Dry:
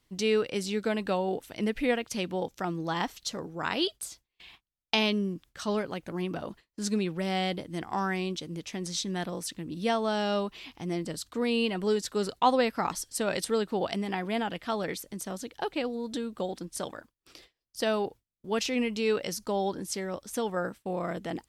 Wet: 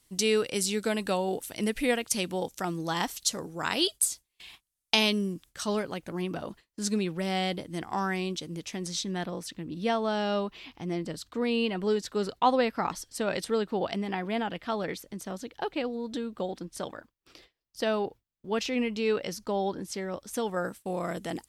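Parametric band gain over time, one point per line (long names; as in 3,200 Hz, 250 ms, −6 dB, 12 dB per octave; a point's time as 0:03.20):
parametric band 10,000 Hz 1.5 octaves
0:05.16 +14.5 dB
0:06.07 +4 dB
0:08.71 +4 dB
0:09.32 −6.5 dB
0:19.98 −6.5 dB
0:20.49 +3 dB
0:20.75 +12 dB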